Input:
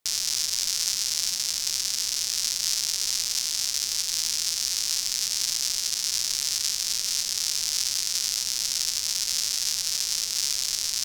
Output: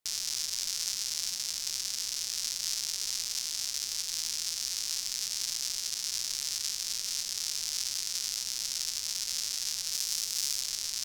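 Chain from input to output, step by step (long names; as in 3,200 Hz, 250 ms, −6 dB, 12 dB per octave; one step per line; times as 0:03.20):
0:09.93–0:10.61: high-shelf EQ 8,800 Hz +6 dB
level −7 dB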